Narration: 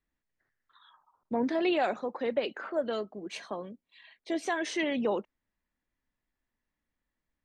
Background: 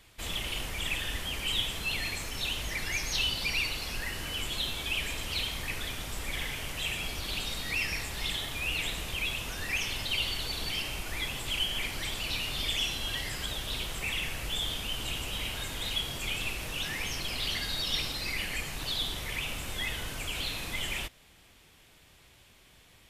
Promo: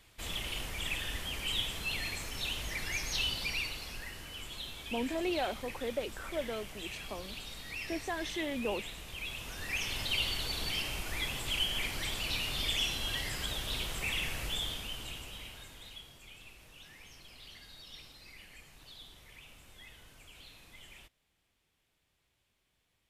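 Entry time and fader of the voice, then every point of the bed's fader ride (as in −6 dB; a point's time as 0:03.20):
3.60 s, −6.0 dB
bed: 0:03.33 −3.5 dB
0:04.28 −10 dB
0:09.04 −10 dB
0:10.03 −1.5 dB
0:14.43 −1.5 dB
0:16.21 −19.5 dB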